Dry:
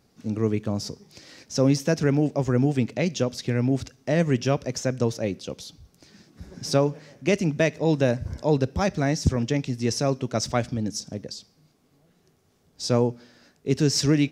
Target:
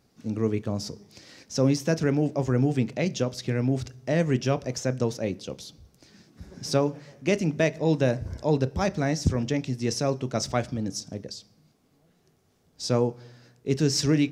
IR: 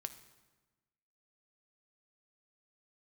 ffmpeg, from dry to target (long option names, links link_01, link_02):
-filter_complex "[0:a]asplit=2[link_01][link_02];[1:a]atrim=start_sample=2205,lowpass=1300,adelay=31[link_03];[link_02][link_03]afir=irnorm=-1:irlink=0,volume=-9.5dB[link_04];[link_01][link_04]amix=inputs=2:normalize=0,volume=-2dB"